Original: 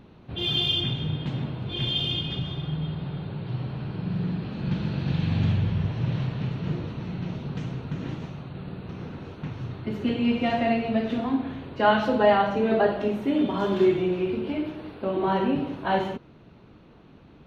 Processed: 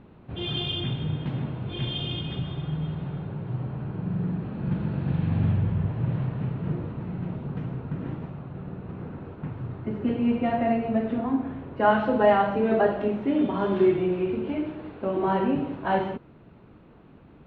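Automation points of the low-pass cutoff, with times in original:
2.99 s 2.4 kHz
3.50 s 1.6 kHz
11.67 s 1.6 kHz
12.32 s 2.4 kHz

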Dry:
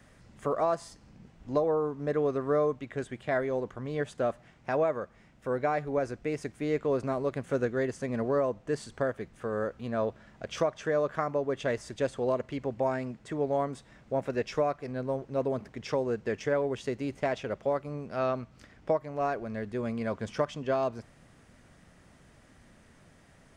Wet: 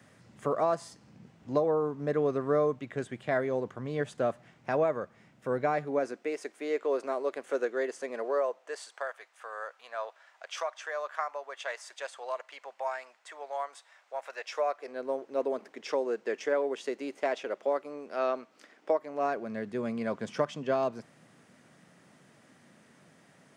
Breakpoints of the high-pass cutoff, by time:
high-pass 24 dB/octave
5.60 s 100 Hz
6.36 s 350 Hz
8.08 s 350 Hz
9.11 s 730 Hz
14.36 s 730 Hz
15.07 s 300 Hz
18.91 s 300 Hz
19.56 s 140 Hz

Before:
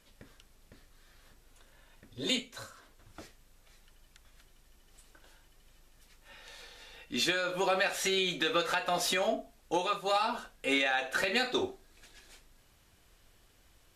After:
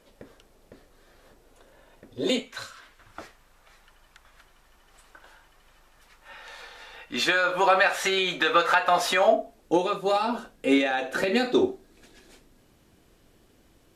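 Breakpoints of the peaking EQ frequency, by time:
peaking EQ +12.5 dB 2.4 oct
2.37 s 490 Hz
2.64 s 3.3 kHz
3.20 s 1.1 kHz
9.15 s 1.1 kHz
9.73 s 280 Hz

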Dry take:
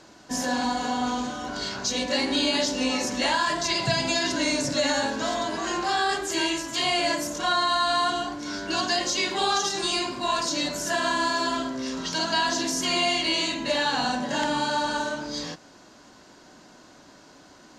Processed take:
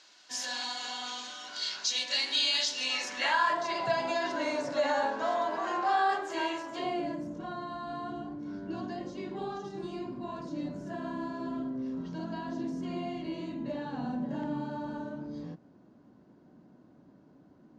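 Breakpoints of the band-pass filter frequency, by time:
band-pass filter, Q 1.1
2.82 s 3.7 kHz
3.63 s 830 Hz
6.63 s 830 Hz
7.12 s 170 Hz

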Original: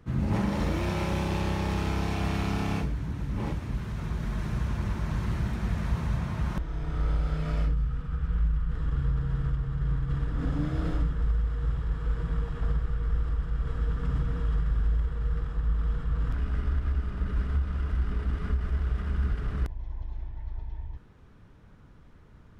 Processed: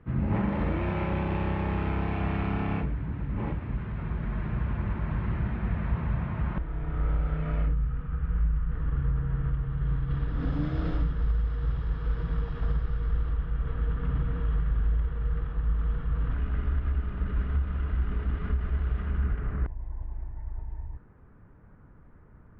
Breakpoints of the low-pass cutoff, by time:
low-pass 24 dB/octave
9.37 s 2.6 kHz
10.52 s 4.8 kHz
12.96 s 4.8 kHz
13.53 s 3.2 kHz
18.96 s 3.2 kHz
19.79 s 1.9 kHz

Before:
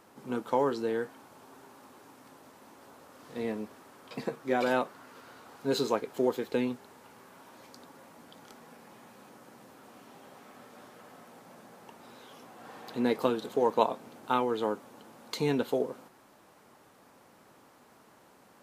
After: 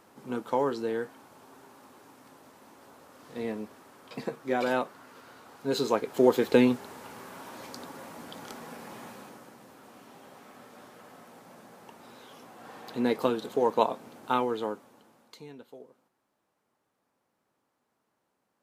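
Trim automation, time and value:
5.73 s 0 dB
6.45 s +9 dB
9.07 s +9 dB
9.57 s +1 dB
14.43 s +1 dB
15.21 s -9.5 dB
15.49 s -19 dB

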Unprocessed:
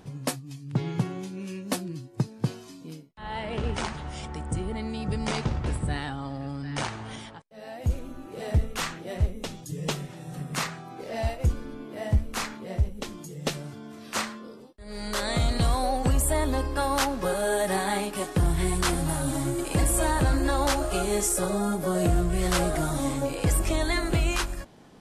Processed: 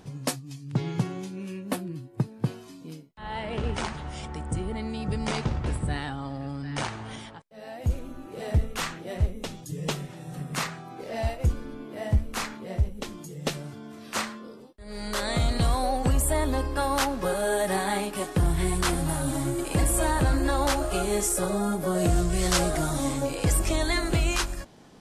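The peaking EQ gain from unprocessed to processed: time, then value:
peaking EQ 5.9 kHz 1.3 oct
1.18 s +2.5 dB
1.65 s -9.5 dB
2.32 s -9.5 dB
2.90 s -1 dB
21.95 s -1 dB
22.20 s +10.5 dB
22.80 s +3.5 dB

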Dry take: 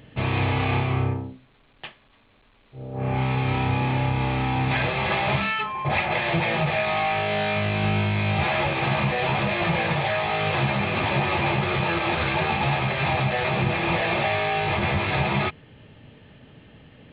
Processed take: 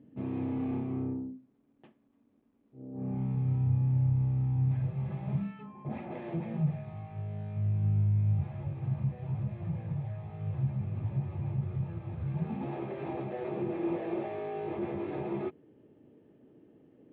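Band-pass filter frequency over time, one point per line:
band-pass filter, Q 3.3
2.89 s 260 Hz
3.70 s 120 Hz
4.84 s 120 Hz
6.24 s 290 Hz
6.96 s 110 Hz
12.22 s 110 Hz
12.74 s 340 Hz

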